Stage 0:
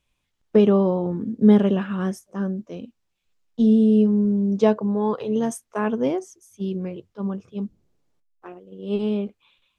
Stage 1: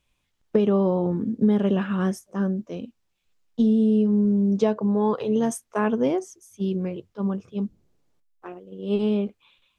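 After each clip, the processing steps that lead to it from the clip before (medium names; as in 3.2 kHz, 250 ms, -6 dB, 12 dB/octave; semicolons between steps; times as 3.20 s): compression 6:1, threshold -18 dBFS, peak gain reduction 8.5 dB; trim +1.5 dB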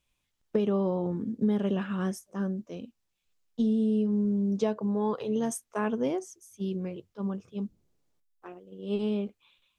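treble shelf 4.2 kHz +5.5 dB; trim -6.5 dB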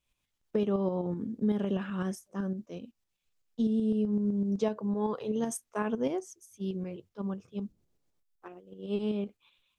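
tremolo saw up 7.9 Hz, depth 50%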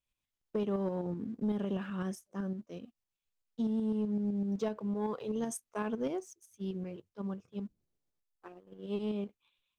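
waveshaping leveller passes 1; trim -7 dB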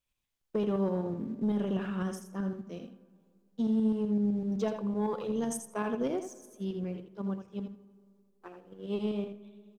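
feedback delay 82 ms, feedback 15%, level -8 dB; reverberation RT60 2.3 s, pre-delay 15 ms, DRR 18.5 dB; trim +2.5 dB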